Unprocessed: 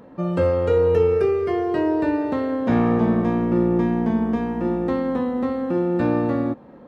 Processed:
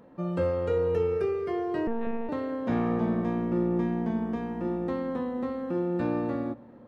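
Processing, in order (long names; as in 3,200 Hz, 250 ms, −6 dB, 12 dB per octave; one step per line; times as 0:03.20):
on a send at −17 dB: convolution reverb RT60 1.9 s, pre-delay 6 ms
0:01.87–0:02.29: on the sum: one-pitch LPC vocoder at 8 kHz 230 Hz
level −8 dB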